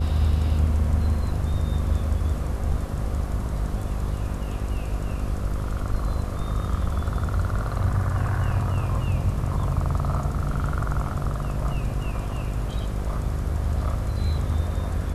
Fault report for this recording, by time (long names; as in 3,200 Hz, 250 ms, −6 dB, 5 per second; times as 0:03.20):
mains buzz 50 Hz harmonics 11 −29 dBFS